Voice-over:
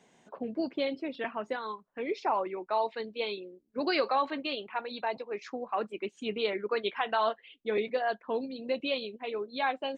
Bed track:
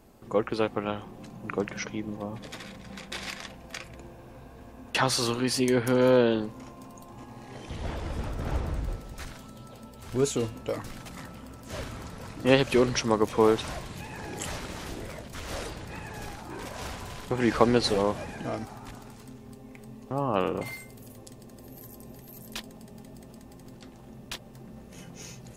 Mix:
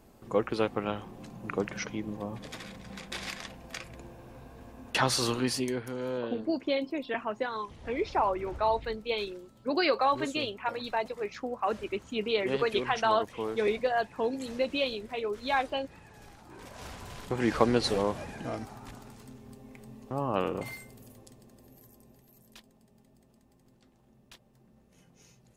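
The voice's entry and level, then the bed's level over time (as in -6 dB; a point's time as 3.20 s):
5.90 s, +2.0 dB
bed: 5.45 s -1.5 dB
5.92 s -13.5 dB
16.23 s -13.5 dB
17.21 s -3 dB
20.74 s -3 dB
22.65 s -16 dB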